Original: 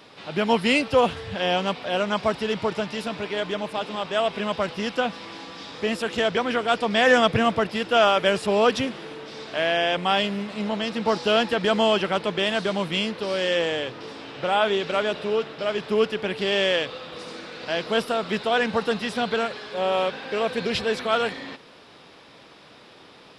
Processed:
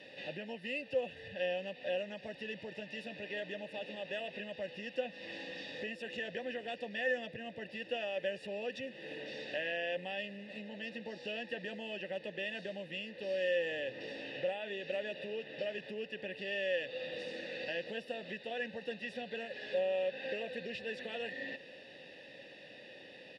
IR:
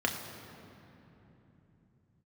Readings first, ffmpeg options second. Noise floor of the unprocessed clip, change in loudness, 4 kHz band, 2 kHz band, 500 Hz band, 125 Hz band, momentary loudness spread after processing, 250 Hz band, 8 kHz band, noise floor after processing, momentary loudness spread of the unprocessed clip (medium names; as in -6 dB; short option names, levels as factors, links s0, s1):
-49 dBFS, -16.0 dB, -17.5 dB, -13.0 dB, -14.5 dB, -19.5 dB, 9 LU, -19.0 dB, under -20 dB, -54 dBFS, 11 LU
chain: -filter_complex "[0:a]equalizer=f=1300:w=0.44:g=-11.5,bandreject=f=660:w=12,aecho=1:1:1.1:0.66,acompressor=threshold=0.01:ratio=6,asplit=3[s0][s1][s2];[s0]bandpass=f=530:t=q:w=8,volume=1[s3];[s1]bandpass=f=1840:t=q:w=8,volume=0.501[s4];[s2]bandpass=f=2480:t=q:w=8,volume=0.355[s5];[s3][s4][s5]amix=inputs=3:normalize=0,volume=6.31"